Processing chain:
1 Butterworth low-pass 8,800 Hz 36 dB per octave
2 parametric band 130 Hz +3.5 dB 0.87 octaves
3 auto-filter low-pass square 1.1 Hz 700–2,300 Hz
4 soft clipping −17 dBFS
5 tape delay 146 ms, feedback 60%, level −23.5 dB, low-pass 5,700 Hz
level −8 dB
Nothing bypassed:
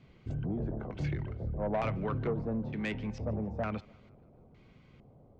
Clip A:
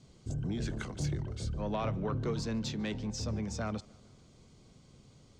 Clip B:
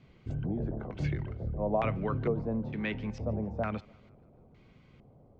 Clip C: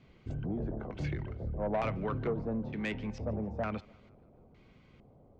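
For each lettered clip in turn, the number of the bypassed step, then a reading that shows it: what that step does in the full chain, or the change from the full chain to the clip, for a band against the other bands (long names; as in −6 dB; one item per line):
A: 3, 4 kHz band +11.5 dB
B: 4, change in crest factor +6.0 dB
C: 2, 125 Hz band −2.0 dB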